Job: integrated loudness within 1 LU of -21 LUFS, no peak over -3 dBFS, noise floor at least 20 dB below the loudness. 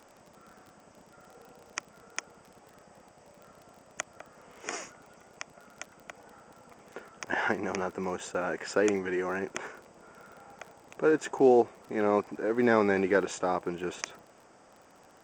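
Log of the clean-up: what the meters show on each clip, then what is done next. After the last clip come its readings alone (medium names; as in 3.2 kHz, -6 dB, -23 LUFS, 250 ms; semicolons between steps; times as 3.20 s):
tick rate 32 per s; loudness -29.5 LUFS; peak level -10.0 dBFS; loudness target -21.0 LUFS
-> de-click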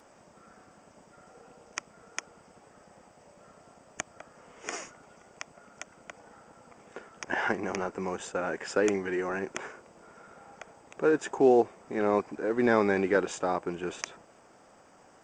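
tick rate 0.13 per s; loudness -29.5 LUFS; peak level -10.0 dBFS; loudness target -21.0 LUFS
-> trim +8.5 dB; peak limiter -3 dBFS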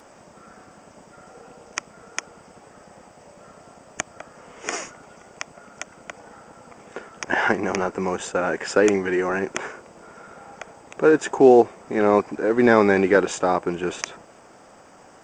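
loudness -21.5 LUFS; peak level -3.0 dBFS; noise floor -50 dBFS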